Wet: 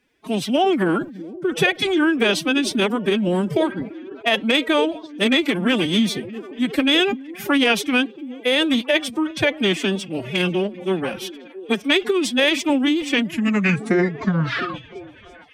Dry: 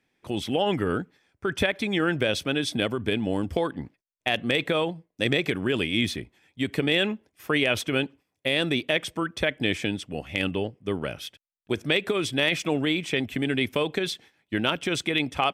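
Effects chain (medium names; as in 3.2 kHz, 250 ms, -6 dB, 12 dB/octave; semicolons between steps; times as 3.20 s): tape stop on the ending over 2.48 s; repeats whose band climbs or falls 338 ms, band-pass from 180 Hz, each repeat 0.7 oct, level -11 dB; formant-preserving pitch shift +11 st; trim +7 dB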